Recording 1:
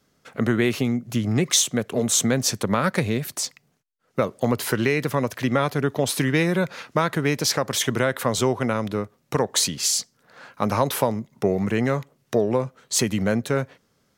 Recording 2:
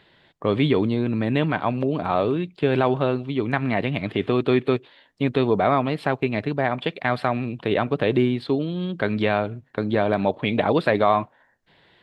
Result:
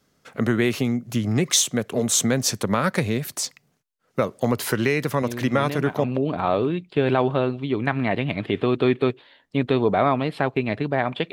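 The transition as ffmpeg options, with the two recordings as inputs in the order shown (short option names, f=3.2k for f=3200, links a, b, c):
-filter_complex "[1:a]asplit=2[a][b];[0:a]apad=whole_dur=11.32,atrim=end=11.32,atrim=end=6.042[c];[b]atrim=start=1.698:end=6.98[d];[a]atrim=start=0.88:end=1.7,asetpts=PTS-STARTPTS,volume=-9dB,afade=t=in:d=0.004:c=hsin,afade=t=out:st=0.816:d=0.004:c=hsin,adelay=5220[e];[c][d]acrossfade=d=0.004:c1=hsin:c2=hsin[f];[f][e]amix=inputs=2:normalize=0"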